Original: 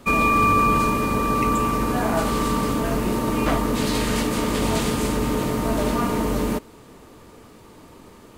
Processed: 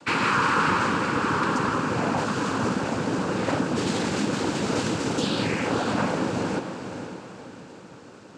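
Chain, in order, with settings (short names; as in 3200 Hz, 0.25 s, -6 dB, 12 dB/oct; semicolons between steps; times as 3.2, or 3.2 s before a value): in parallel at -6.5 dB: wavefolder -23.5 dBFS; on the sum: painted sound fall, 5.17–6.21, 460–4800 Hz -30 dBFS; noise vocoder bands 8; diffused feedback echo 0.513 s, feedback 42%, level -8.5 dB; gain -4 dB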